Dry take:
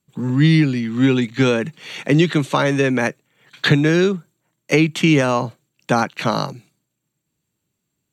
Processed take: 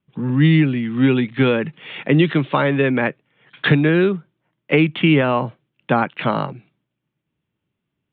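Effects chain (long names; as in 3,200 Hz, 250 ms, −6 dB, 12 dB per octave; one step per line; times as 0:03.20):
Butterworth low-pass 3,500 Hz 72 dB per octave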